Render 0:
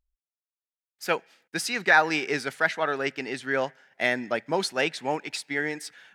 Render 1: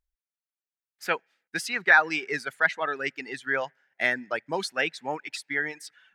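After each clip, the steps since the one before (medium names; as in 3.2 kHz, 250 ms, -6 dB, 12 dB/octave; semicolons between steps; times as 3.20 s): reverb removal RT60 1.3 s; peaking EQ 1.7 kHz +6.5 dB 1.2 oct; trim -4 dB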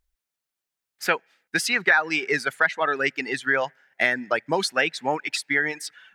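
compression 3:1, threshold -27 dBFS, peak gain reduction 10.5 dB; trim +8.5 dB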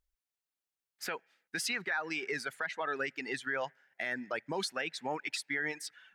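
peak limiter -16.5 dBFS, peak gain reduction 10.5 dB; trim -8 dB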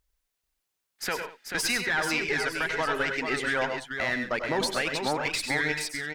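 single-diode clipper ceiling -34 dBFS; on a send: multi-tap echo 88/100/102/134/190/437 ms -13/-10.5/-10/-14/-19.5/-6.5 dB; on the sum: trim +8.5 dB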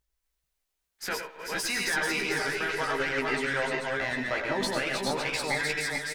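backward echo that repeats 221 ms, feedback 41%, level -2 dB; doubling 15 ms -5 dB; trim -4.5 dB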